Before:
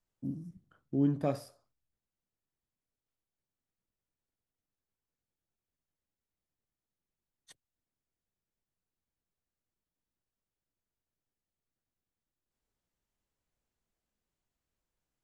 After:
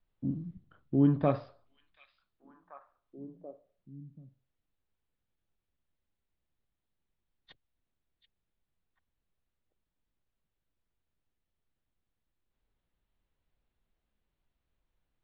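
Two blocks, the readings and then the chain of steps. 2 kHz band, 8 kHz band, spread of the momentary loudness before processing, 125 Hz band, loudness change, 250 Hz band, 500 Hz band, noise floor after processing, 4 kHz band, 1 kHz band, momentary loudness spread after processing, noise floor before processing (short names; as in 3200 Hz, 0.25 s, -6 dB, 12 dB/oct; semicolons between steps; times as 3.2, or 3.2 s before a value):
+4.5 dB, under -15 dB, 15 LU, +5.0 dB, +4.0 dB, +4.0 dB, +4.0 dB, under -85 dBFS, -1.0 dB, +6.0 dB, 22 LU, under -85 dBFS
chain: dynamic EQ 1100 Hz, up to +7 dB, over -56 dBFS, Q 2.2; steep low-pass 4100 Hz 48 dB/oct; low shelf 69 Hz +10 dB; delay with a stepping band-pass 0.734 s, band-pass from 3100 Hz, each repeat -1.4 oct, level -10.5 dB; gain +3 dB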